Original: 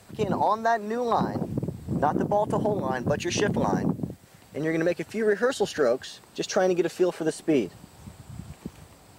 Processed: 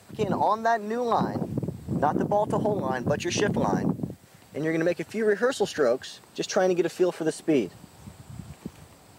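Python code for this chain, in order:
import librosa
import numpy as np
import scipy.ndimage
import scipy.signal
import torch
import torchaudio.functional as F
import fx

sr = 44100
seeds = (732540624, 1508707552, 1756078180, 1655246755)

y = scipy.signal.sosfilt(scipy.signal.butter(2, 66.0, 'highpass', fs=sr, output='sos'), x)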